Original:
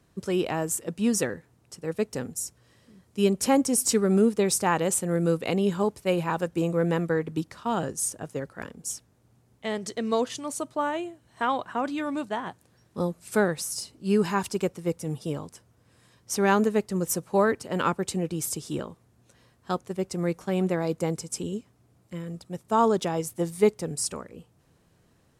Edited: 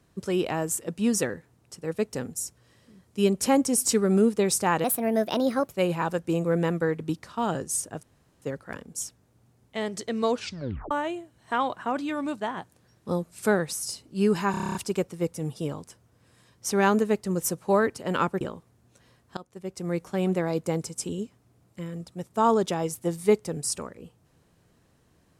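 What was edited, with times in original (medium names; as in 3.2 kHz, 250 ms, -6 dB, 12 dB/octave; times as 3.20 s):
4.84–6.00 s: speed 132%
8.31 s: insert room tone 0.39 s
10.23 s: tape stop 0.57 s
14.40 s: stutter 0.03 s, 9 plays
18.06–18.75 s: delete
19.71–20.40 s: fade in, from -20.5 dB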